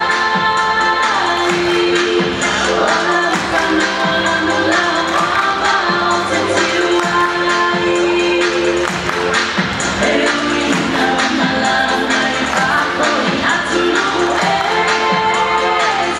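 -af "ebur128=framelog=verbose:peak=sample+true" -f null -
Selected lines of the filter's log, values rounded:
Integrated loudness:
  I:         -13.9 LUFS
  Threshold: -23.9 LUFS
Loudness range:
  LRA:         0.8 LU
  Threshold: -34.0 LUFS
  LRA low:   -14.5 LUFS
  LRA high:  -13.7 LUFS
Sample peak:
  Peak:       -1.1 dBFS
True peak:
  Peak:       -0.9 dBFS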